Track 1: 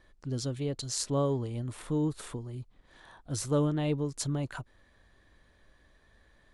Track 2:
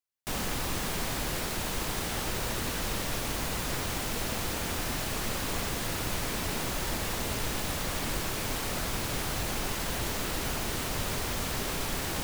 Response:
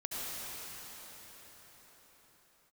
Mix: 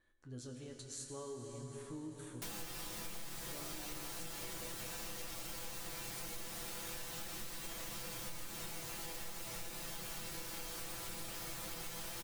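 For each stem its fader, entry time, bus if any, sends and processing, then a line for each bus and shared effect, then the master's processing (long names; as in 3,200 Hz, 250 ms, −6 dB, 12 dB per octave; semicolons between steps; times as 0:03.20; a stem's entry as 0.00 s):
−8.0 dB, 0.00 s, send −4 dB, thirty-one-band graphic EQ 315 Hz +4 dB, 1,600 Hz +7 dB, 5,000 Hz −9 dB
−3.0 dB, 2.15 s, send −3 dB, comb filter 5.9 ms, depth 90%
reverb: on, pre-delay 63 ms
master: high-shelf EQ 3,600 Hz +7 dB; resonators tuned to a chord E2 major, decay 0.23 s; downward compressor 6 to 1, threshold −42 dBFS, peak gain reduction 14.5 dB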